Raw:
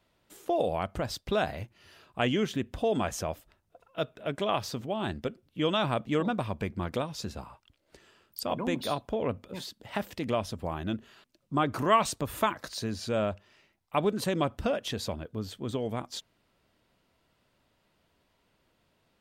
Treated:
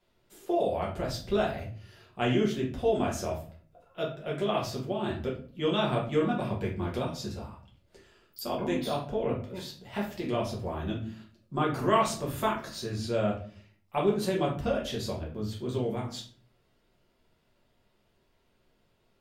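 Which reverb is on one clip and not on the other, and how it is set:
rectangular room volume 37 cubic metres, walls mixed, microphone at 1 metre
level −6.5 dB

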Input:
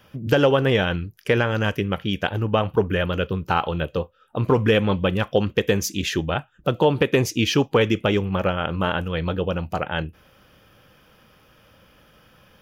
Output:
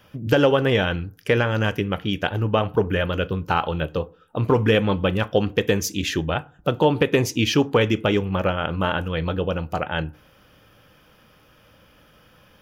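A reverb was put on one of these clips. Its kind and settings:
feedback delay network reverb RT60 0.44 s, low-frequency decay 1.1×, high-frequency decay 0.4×, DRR 16 dB

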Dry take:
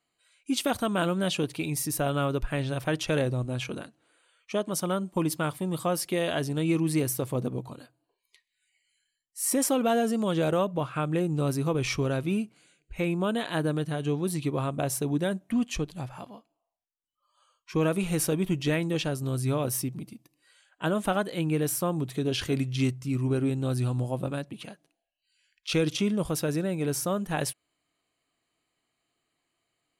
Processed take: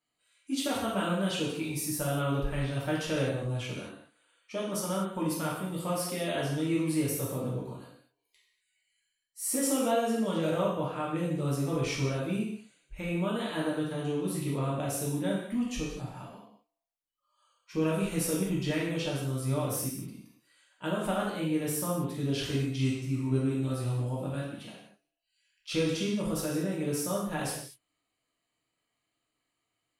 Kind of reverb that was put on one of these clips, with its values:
reverb whose tail is shaped and stops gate 270 ms falling, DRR −5.5 dB
level −9.5 dB

